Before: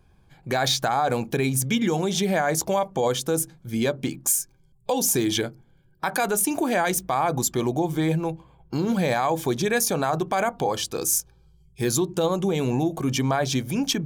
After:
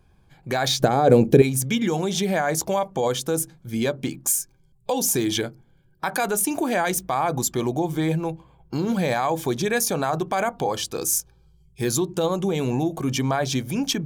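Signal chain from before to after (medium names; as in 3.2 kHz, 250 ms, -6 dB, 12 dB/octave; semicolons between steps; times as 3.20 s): 0.80–1.42 s: resonant low shelf 660 Hz +10 dB, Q 1.5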